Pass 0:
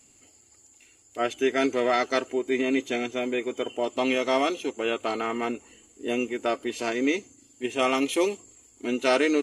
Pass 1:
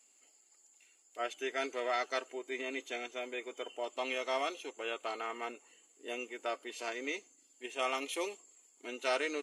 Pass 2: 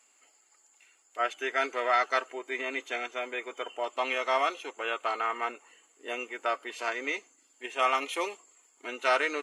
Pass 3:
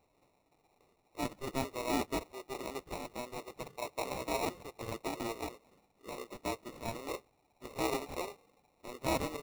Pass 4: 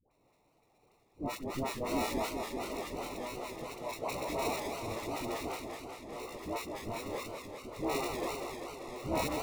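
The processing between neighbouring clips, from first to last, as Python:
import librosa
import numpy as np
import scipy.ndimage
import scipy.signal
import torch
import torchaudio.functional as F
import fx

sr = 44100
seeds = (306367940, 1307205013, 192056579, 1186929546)

y1 = scipy.signal.sosfilt(scipy.signal.butter(2, 530.0, 'highpass', fs=sr, output='sos'), x)
y1 = y1 * librosa.db_to_amplitude(-8.5)
y2 = fx.peak_eq(y1, sr, hz=1300.0, db=11.5, octaves=2.0)
y3 = fx.sample_hold(y2, sr, seeds[0], rate_hz=1600.0, jitter_pct=0)
y3 = y3 * librosa.db_to_amplitude(-7.5)
y4 = fx.dispersion(y3, sr, late='highs', ms=111.0, hz=750.0)
y4 = fx.echo_warbled(y4, sr, ms=196, feedback_pct=74, rate_hz=2.8, cents=189, wet_db=-6.0)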